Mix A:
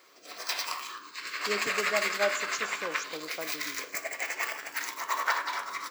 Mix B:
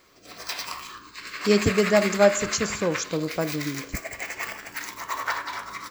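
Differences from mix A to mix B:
speech +10.5 dB
master: remove high-pass filter 390 Hz 12 dB per octave

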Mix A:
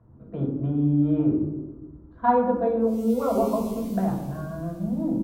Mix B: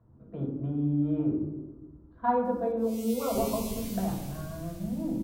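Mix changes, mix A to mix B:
speech −6.0 dB
background +6.5 dB

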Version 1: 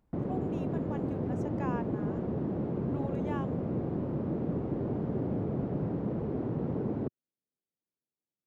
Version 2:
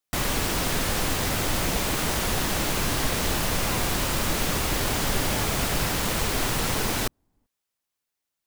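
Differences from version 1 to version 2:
speech: entry +2.05 s
background: remove flat-topped band-pass 230 Hz, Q 0.68

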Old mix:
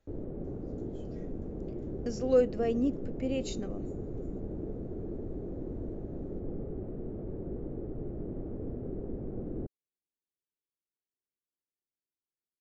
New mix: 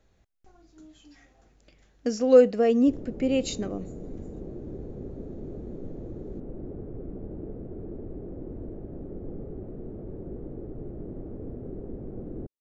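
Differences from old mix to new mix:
speech +8.5 dB
background: entry +2.80 s

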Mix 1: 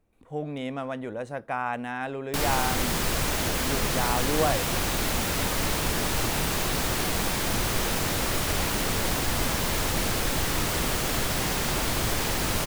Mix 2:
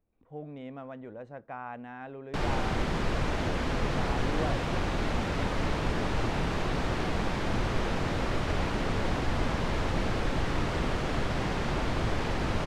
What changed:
speech −8.0 dB
master: add head-to-tape spacing loss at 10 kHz 26 dB

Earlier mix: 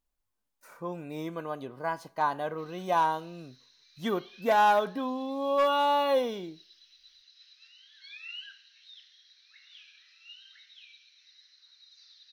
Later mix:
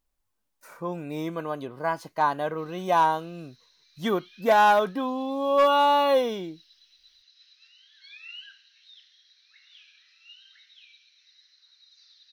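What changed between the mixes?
speech +6.5 dB
reverb: off

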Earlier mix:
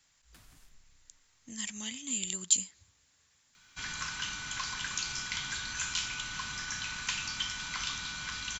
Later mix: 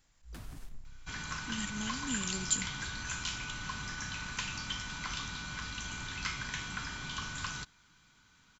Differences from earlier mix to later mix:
first sound +9.5 dB
second sound: entry −2.70 s
master: add tilt shelving filter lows +5.5 dB, about 1,100 Hz

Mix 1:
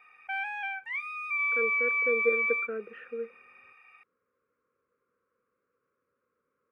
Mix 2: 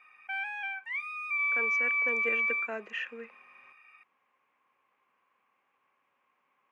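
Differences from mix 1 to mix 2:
speech: remove pair of resonant band-passes 810 Hz, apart 1.5 octaves
master: add Bessel high-pass filter 1,000 Hz, order 2

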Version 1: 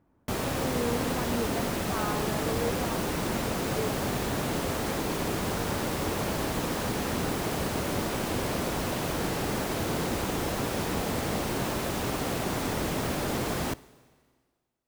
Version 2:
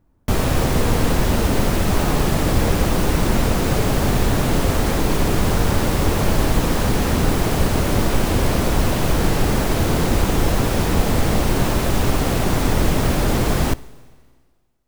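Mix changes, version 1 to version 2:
background +8.0 dB
master: remove high-pass filter 190 Hz 6 dB per octave

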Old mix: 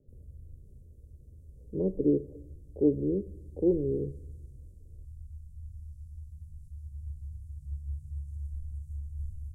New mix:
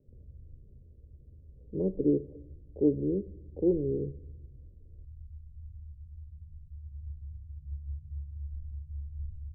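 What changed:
background: send −9.5 dB
master: add high-frequency loss of the air 380 metres

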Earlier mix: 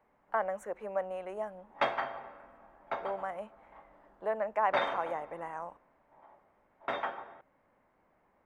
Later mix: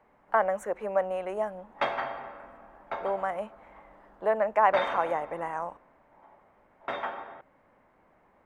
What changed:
speech +7.0 dB
background: send +7.0 dB

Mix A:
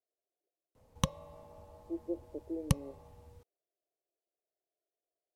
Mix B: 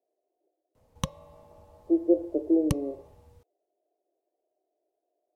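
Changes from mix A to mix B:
speech +11.5 dB
reverb: on, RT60 0.45 s

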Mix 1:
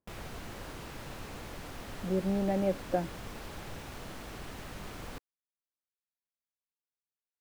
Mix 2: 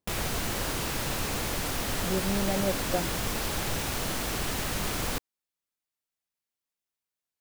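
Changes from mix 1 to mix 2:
background +11.0 dB
master: add high-shelf EQ 4,000 Hz +10 dB

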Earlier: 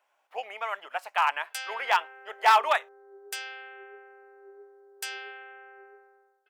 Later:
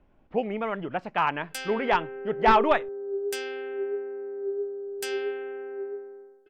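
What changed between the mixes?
speech: add high-frequency loss of the air 180 metres
master: remove high-pass filter 720 Hz 24 dB per octave

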